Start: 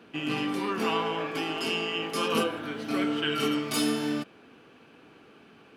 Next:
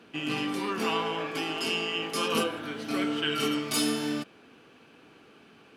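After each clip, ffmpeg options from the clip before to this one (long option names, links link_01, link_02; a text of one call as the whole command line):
ffmpeg -i in.wav -af "equalizer=frequency=7700:width=0.4:gain=4.5,volume=-1.5dB" out.wav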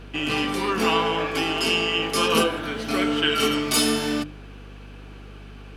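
ffmpeg -i in.wav -af "bandreject=frequency=50:width_type=h:width=6,bandreject=frequency=100:width_type=h:width=6,bandreject=frequency=150:width_type=h:width=6,bandreject=frequency=200:width_type=h:width=6,bandreject=frequency=250:width_type=h:width=6,bandreject=frequency=300:width_type=h:width=6,aeval=exprs='val(0)+0.00398*(sin(2*PI*50*n/s)+sin(2*PI*2*50*n/s)/2+sin(2*PI*3*50*n/s)/3+sin(2*PI*4*50*n/s)/4+sin(2*PI*5*50*n/s)/5)':channel_layout=same,volume=7.5dB" out.wav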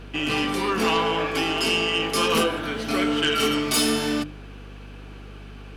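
ffmpeg -i in.wav -af "aeval=exprs='0.447*sin(PI/2*1.78*val(0)/0.447)':channel_layout=same,volume=-8dB" out.wav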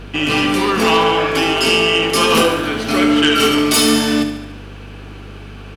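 ffmpeg -i in.wav -af "aecho=1:1:71|142|213|284|355|426|497:0.335|0.194|0.113|0.0654|0.0379|0.022|0.0128,volume=7.5dB" out.wav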